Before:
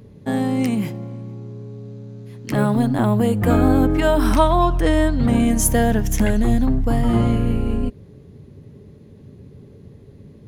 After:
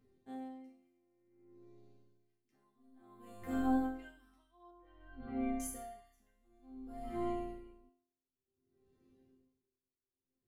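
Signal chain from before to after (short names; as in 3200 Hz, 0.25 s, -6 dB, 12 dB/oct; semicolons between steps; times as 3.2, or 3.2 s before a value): 1.04–1.5 resonant high shelf 2700 Hz -12.5 dB, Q 3; 5.81–6.1 spectral repair 1100–11000 Hz before; resonator bank C4 sus4, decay 0.79 s; 4.71–5.6 air absorption 380 m; dB-linear tremolo 0.55 Hz, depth 32 dB; gain +3 dB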